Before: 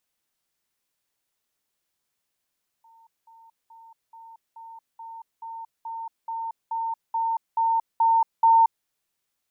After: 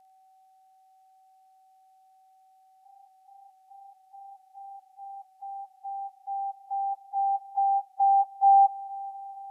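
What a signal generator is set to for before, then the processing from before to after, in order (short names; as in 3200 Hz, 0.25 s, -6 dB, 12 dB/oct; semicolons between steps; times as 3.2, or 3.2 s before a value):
level ladder 909 Hz -52 dBFS, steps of 3 dB, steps 14, 0.23 s 0.20 s
inharmonic rescaling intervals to 89%; whine 760 Hz -57 dBFS; multi-head echo 0.226 s, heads first and second, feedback 68%, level -24 dB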